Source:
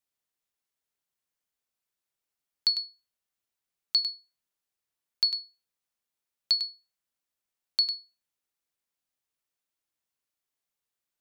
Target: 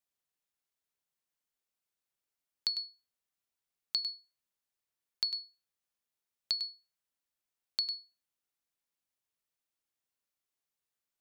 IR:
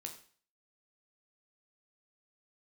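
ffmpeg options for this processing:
-af "acompressor=threshold=-26dB:ratio=6,volume=-3dB"

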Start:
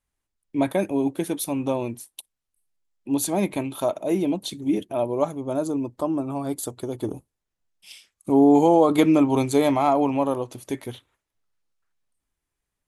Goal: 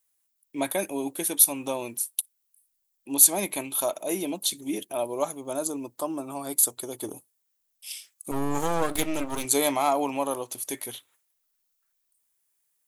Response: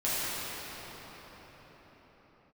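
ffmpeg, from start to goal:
-filter_complex "[0:a]aemphasis=mode=production:type=riaa,asettb=1/sr,asplit=3[a][b][c];[a]atrim=end=8.314[d];[b]atrim=start=8.31:end=9.45,asetpts=PTS-STARTPTS,afade=t=in:d=0.004:c=qsin,afade=t=out:st=1.136:d=0.004:c=qsin,aeval=exprs='max(val(0),0)':c=same[e];[c]atrim=start=9.446[f];[d][e]acrossfade=d=0.004:c1=hsin:c2=qsin[g];[g][f]acrossfade=d=0.004:c1=qsin:c2=hsin,volume=-2.5dB"

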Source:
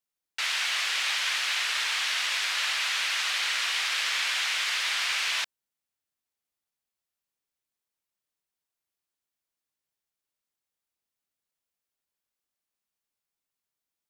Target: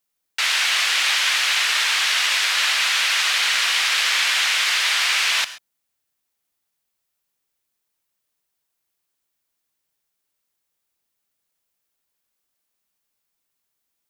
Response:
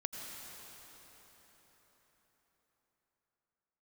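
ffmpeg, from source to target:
-filter_complex "[0:a]asplit=2[a][b];[1:a]atrim=start_sample=2205,atrim=end_sample=6174,highshelf=f=10k:g=8.5[c];[b][c]afir=irnorm=-1:irlink=0,volume=0.5dB[d];[a][d]amix=inputs=2:normalize=0,volume=3dB"

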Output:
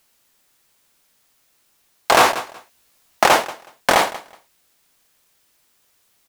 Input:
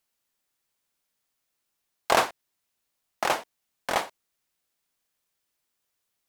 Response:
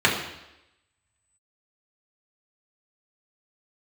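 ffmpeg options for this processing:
-filter_complex "[0:a]asplit=2[a][b];[b]acrusher=bits=3:mode=log:mix=0:aa=0.000001,volume=-3.5dB[c];[a][c]amix=inputs=2:normalize=0,asettb=1/sr,asplit=3[d][e][f];[d]atrim=end=2.164[g];[e]atrim=start=2.16:end=3.24,asetpts=PTS-STARTPTS,afade=t=in:d=0.004:c=qsin,afade=t=out:st=1.076:d=0.004:c=qsin,asplit=2[h][i];[i]adelay=16,volume=-2dB[j];[h][j]amix=inputs=2:normalize=0,atrim=end_sample=47628[k];[f]atrim=start=3.236[l];[g][k]acrossfade=d=0.004:c1=hsin:c2=qsin[m];[m][l]acrossfade=d=0.004:c1=qsin:c2=hsin,aecho=1:1:186|372:0.0668|0.012,alimiter=level_in=13.5dB:limit=-1dB:release=50:level=0:latency=1,volume=-1dB"

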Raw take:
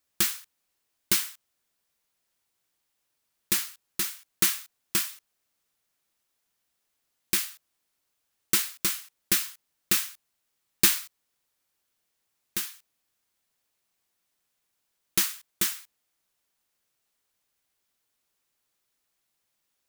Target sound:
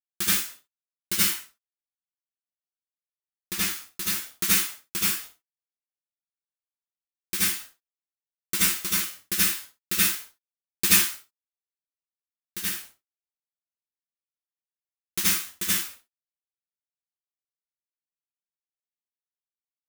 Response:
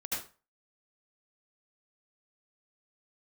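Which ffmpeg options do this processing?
-filter_complex "[0:a]asettb=1/sr,asplit=3[a][b][c];[a]atrim=end=1.264[d];[b]atrim=start=1.26:end=3.61,asetpts=PTS-STARTPTS,afade=t=in:d=0.004:c=qsin,afade=t=out:st=2.346:d=0.004:c=qsin,highshelf=f=6.7k:g=-4.5[e];[c]atrim=start=3.606[f];[d][e]acrossfade=d=0.004:c1=hsin:c2=qsin[g];[g][f]acrossfade=d=0.004:c1=qsin:c2=hsin,acrusher=bits=7:mix=0:aa=0.000001,aecho=1:1:11|61:0.562|0.316[h];[1:a]atrim=start_sample=2205,afade=t=out:st=0.22:d=0.01,atrim=end_sample=10143[i];[h][i]afir=irnorm=-1:irlink=0,volume=-1dB"

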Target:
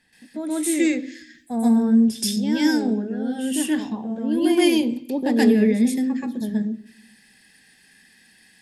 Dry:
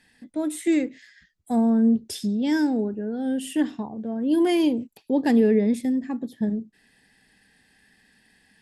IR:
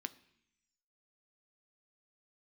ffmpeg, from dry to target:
-filter_complex "[0:a]asplit=2[a][b];[1:a]atrim=start_sample=2205,highshelf=f=3.2k:g=11,adelay=127[c];[b][c]afir=irnorm=-1:irlink=0,volume=7dB[d];[a][d]amix=inputs=2:normalize=0,volume=-3.5dB"

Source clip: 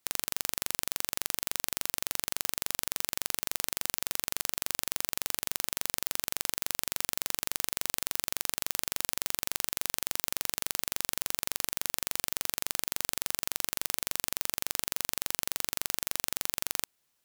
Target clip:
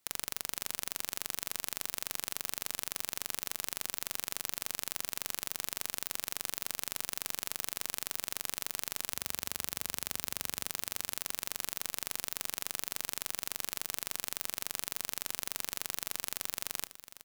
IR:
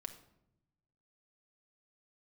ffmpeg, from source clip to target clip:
-filter_complex "[0:a]asettb=1/sr,asplit=3[a][b][c];[a]atrim=end=9.104[d];[b]atrim=start=9.1:end=10.67,asetpts=PTS-STARTPTS,afade=t=in:d=0.004:c=qsin,afade=t=out:st=1.566:d=0.004:c=qsin,highpass=f=60:w=0.5412,highpass=f=60:w=1.3066[e];[c]atrim=start=10.666[f];[d][e]acrossfade=d=0.004:c1=hsin:c2=qsin[g];[g][f]acrossfade=d=0.004:c1=qsin:c2=hsin,acontrast=83,aecho=1:1:500|1000:0.2|0.0299,asplit=2[h][i];[1:a]atrim=start_sample=2205,atrim=end_sample=4410[j];[i][j]afir=irnorm=-1:irlink=0,volume=-6dB[k];[h][k]amix=inputs=2:normalize=0,volume=-8dB"

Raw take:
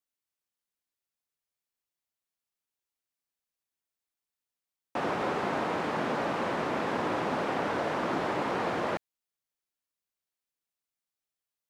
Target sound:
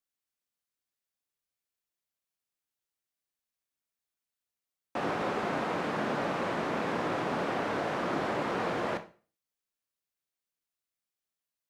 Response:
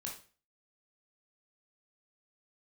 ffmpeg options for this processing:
-filter_complex "[0:a]equalizer=f=900:t=o:w=0.32:g=-2.5,asplit=2[a][b];[1:a]atrim=start_sample=2205[c];[b][c]afir=irnorm=-1:irlink=0,volume=-1.5dB[d];[a][d]amix=inputs=2:normalize=0,volume=-4.5dB"

